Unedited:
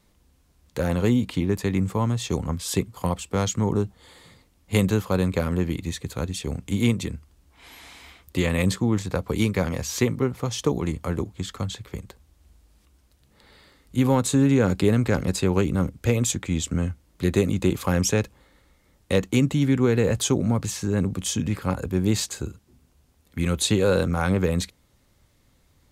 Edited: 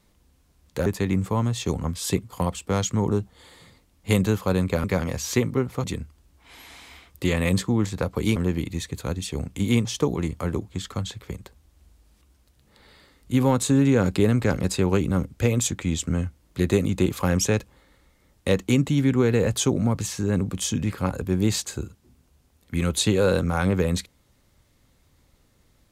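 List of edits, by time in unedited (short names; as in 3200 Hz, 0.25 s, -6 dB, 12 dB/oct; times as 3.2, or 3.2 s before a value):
0.86–1.5 cut
5.48–6.97 swap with 9.49–10.49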